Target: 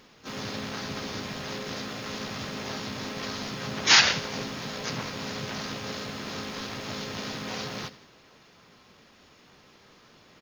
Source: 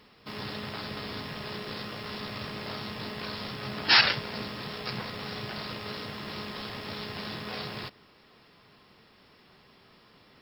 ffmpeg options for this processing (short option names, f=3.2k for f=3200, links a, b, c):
-filter_complex "[0:a]asplit=2[a][b];[b]aecho=0:1:86|172|258|344|430:0.141|0.0749|0.0397|0.021|0.0111[c];[a][c]amix=inputs=2:normalize=0,asplit=2[d][e];[e]asetrate=55563,aresample=44100,atempo=0.793701,volume=-2dB[f];[d][f]amix=inputs=2:normalize=0"